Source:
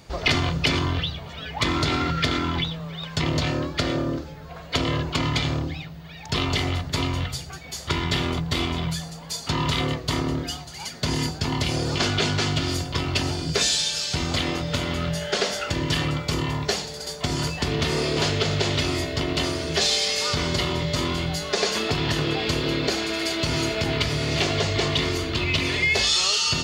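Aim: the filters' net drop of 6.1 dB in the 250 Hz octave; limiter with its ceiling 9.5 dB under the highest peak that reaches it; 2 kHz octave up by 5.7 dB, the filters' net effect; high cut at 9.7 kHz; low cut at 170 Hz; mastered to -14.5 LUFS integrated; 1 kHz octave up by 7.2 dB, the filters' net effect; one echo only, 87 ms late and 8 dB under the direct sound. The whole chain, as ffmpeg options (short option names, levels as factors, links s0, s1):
-af "highpass=170,lowpass=9700,equalizer=f=250:t=o:g=-8,equalizer=f=1000:t=o:g=8,equalizer=f=2000:t=o:g=5,alimiter=limit=0.224:level=0:latency=1,aecho=1:1:87:0.398,volume=2.66"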